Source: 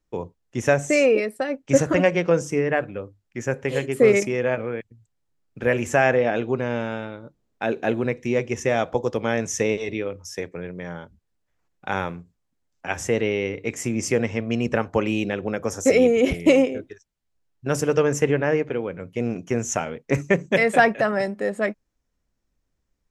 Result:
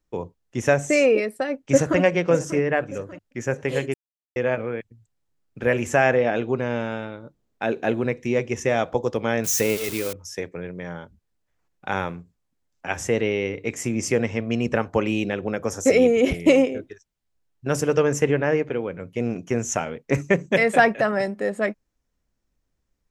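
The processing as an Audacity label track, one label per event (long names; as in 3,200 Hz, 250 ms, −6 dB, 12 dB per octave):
1.540000	2.000000	delay throw 590 ms, feedback 45%, level −13.5 dB
3.940000	4.360000	silence
9.440000	10.130000	spike at every zero crossing of −19 dBFS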